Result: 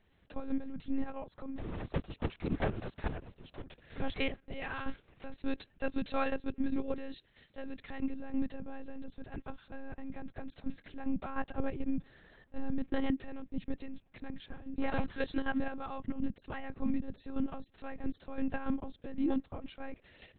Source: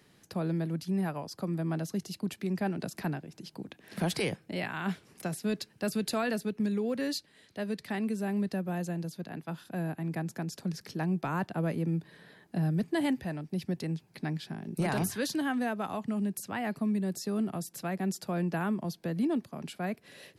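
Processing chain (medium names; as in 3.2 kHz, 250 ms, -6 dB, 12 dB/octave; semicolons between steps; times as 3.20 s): 1.57–3.62 s: cycle switcher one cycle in 3, inverted; level held to a coarse grid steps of 10 dB; monotone LPC vocoder at 8 kHz 270 Hz; trim +1 dB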